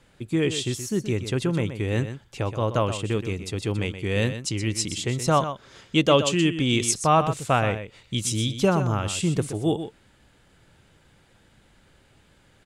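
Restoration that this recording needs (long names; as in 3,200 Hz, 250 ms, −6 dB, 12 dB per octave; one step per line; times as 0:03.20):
echo removal 124 ms −10.5 dB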